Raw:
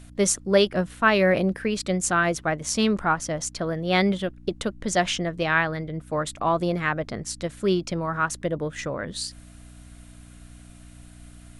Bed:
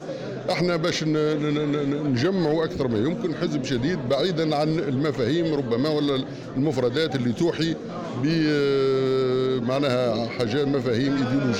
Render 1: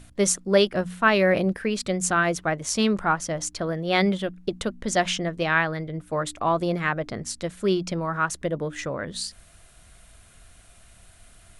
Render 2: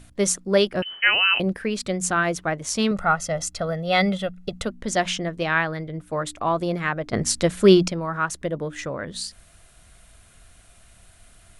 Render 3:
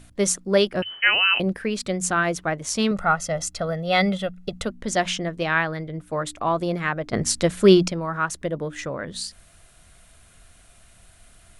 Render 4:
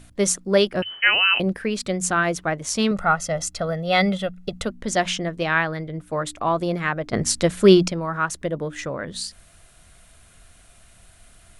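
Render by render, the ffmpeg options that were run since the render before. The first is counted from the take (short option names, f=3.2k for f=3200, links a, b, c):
-af "bandreject=f=60:t=h:w=4,bandreject=f=120:t=h:w=4,bandreject=f=180:t=h:w=4,bandreject=f=240:t=h:w=4,bandreject=f=300:t=h:w=4"
-filter_complex "[0:a]asettb=1/sr,asplit=3[a][b][c];[a]atrim=end=0.824[d];[b]atrim=start=0.82:end=1.4,asetpts=PTS-STARTPTS,afade=t=in:d=0.004:c=qsin,afade=t=out:st=0.576:d=0.004:c=qsin,lowpass=f=2.7k:t=q:w=0.5098,lowpass=f=2.7k:t=q:w=0.6013,lowpass=f=2.7k:t=q:w=0.9,lowpass=f=2.7k:t=q:w=2.563,afreqshift=-3200[e];[c]atrim=start=1.396[f];[d][e]acrossfade=d=0.004:c1=hsin:c2=qsin[g];[g][f]acrossfade=d=0.004:c1=qsin:c2=hsin,asettb=1/sr,asplit=3[h][i][j];[h]atrim=end=2.914[k];[i]atrim=start=2.91:end=4.66,asetpts=PTS-STARTPTS,afade=t=in:d=0.004:c=qsin,afade=t=out:st=1.746:d=0.004:c=qsin,aecho=1:1:1.5:0.66,atrim=end_sample=77175[l];[j]atrim=start=4.656[m];[k][l]acrossfade=d=0.004:c1=hsin:c2=qsin[n];[n][m]acrossfade=d=0.004:c1=qsin:c2=hsin,asplit=3[o][p][q];[o]atrim=end=7.132[r];[p]atrim=start=7.128:end=7.882,asetpts=PTS-STARTPTS,volume=9.5dB[s];[q]atrim=start=7.878[t];[r][s]acrossfade=d=0.004:c1=hsin:c2=hsin[u];[u][t]acrossfade=d=0.004:c1=hsin:c2=hsin"
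-af "bandreject=f=50:t=h:w=6,bandreject=f=100:t=h:w=6"
-af "volume=1dB"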